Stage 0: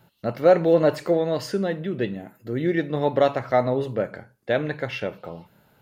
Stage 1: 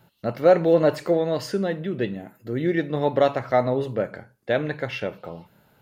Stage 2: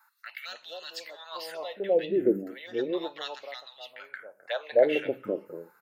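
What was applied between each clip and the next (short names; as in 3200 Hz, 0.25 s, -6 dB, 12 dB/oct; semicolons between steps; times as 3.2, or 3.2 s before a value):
nothing audible
envelope phaser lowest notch 520 Hz, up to 2200 Hz, full sweep at -18 dBFS; LFO high-pass sine 0.35 Hz 300–2800 Hz; three bands offset in time highs, lows, mids 0.23/0.26 s, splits 210/860 Hz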